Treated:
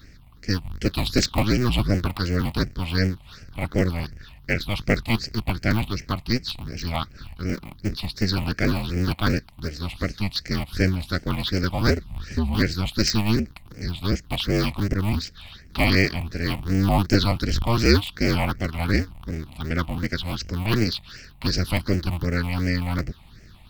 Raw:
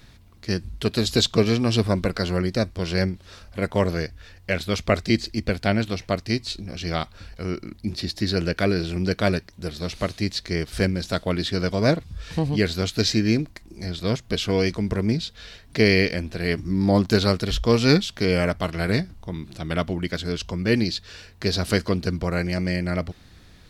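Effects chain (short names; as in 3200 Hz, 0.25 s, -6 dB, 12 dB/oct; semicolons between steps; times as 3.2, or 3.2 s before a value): cycle switcher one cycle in 2, inverted; phaser stages 6, 2.7 Hz, lowest notch 400–1000 Hz; gain +2 dB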